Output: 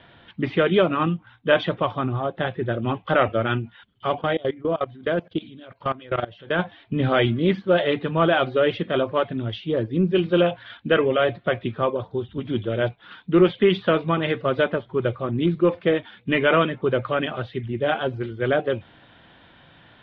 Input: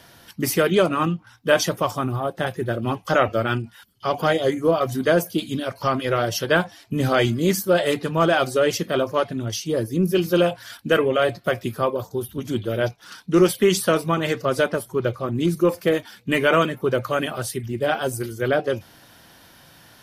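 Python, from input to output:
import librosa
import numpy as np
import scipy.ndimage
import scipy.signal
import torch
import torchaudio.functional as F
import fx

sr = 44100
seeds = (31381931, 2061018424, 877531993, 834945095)

y = fx.level_steps(x, sr, step_db=21, at=(4.19, 6.59))
y = scipy.signal.sosfilt(scipy.signal.cheby1(5, 1.0, 3600.0, 'lowpass', fs=sr, output='sos'), y)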